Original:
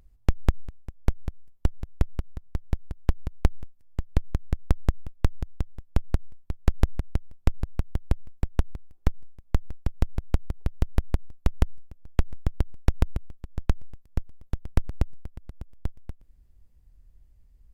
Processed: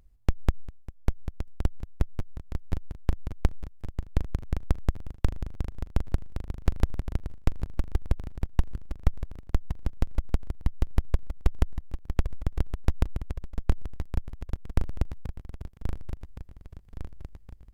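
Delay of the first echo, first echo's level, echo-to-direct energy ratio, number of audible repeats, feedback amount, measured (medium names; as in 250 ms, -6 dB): 1117 ms, -9.5 dB, -7.5 dB, 6, 58%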